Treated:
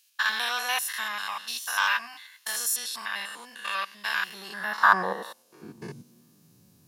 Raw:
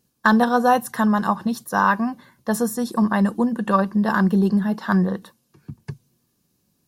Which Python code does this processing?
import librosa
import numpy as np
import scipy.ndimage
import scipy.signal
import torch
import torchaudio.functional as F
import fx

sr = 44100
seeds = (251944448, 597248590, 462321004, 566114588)

p1 = fx.spec_steps(x, sr, hold_ms=100)
p2 = 10.0 ** (-19.0 / 20.0) * np.tanh(p1 / 10.0 ** (-19.0 / 20.0))
p3 = p1 + (p2 * librosa.db_to_amplitude(-3.0))
p4 = fx.filter_sweep_highpass(p3, sr, from_hz=2600.0, to_hz=100.0, start_s=4.24, end_s=6.71, q=2.0)
p5 = fx.doubler(p4, sr, ms=17.0, db=-9.0, at=(1.46, 2.52))
y = p5 * librosa.db_to_amplitude(3.5)